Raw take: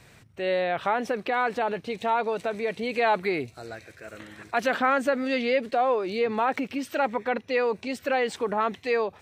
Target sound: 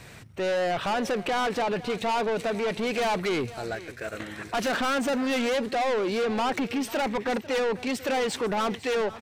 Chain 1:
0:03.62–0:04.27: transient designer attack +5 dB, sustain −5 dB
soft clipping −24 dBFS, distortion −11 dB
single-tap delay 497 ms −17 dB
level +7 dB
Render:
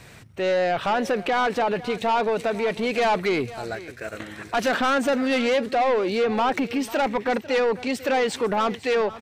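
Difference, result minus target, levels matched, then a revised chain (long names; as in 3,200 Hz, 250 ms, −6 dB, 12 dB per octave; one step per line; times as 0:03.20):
soft clipping: distortion −4 dB
0:03.62–0:04.27: transient designer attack +5 dB, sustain −5 dB
soft clipping −30.5 dBFS, distortion −6 dB
single-tap delay 497 ms −17 dB
level +7 dB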